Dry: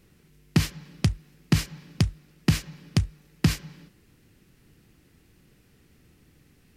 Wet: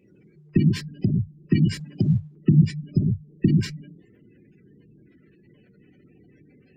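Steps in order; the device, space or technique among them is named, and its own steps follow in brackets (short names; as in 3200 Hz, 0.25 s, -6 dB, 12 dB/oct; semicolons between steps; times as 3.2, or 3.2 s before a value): non-linear reverb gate 0.17 s flat, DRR -2.5 dB; 2.06–2.99 dynamic EQ 150 Hz, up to +6 dB, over -35 dBFS, Q 5.4; noise-suppressed video call (HPF 160 Hz 12 dB/oct; spectral gate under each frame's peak -15 dB strong; gain +4 dB; Opus 20 kbps 48000 Hz)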